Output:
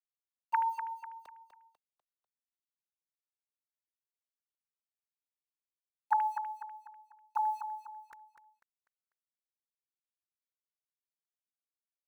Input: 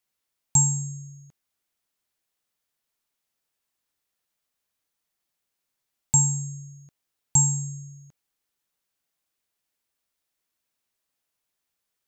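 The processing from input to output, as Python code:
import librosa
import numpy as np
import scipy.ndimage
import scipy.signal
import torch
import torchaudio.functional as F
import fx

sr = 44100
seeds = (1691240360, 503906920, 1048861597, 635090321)

p1 = fx.sine_speech(x, sr)
p2 = fx.doppler_pass(p1, sr, speed_mps=9, closest_m=3.4, pass_at_s=3.37)
p3 = scipy.signal.sosfilt(scipy.signal.butter(2, 730.0, 'highpass', fs=sr, output='sos'), p2)
p4 = fx.peak_eq(p3, sr, hz=1600.0, db=8.0, octaves=0.49)
p5 = fx.over_compress(p4, sr, threshold_db=-44.0, ratio=-0.5)
p6 = p4 + (p5 * 10.0 ** (-2.0 / 20.0))
p7 = np.where(np.abs(p6) >= 10.0 ** (-58.5 / 20.0), p6, 0.0)
p8 = fx.echo_feedback(p7, sr, ms=247, feedback_pct=40, wet_db=-9)
y = p8 * 10.0 ** (7.0 / 20.0)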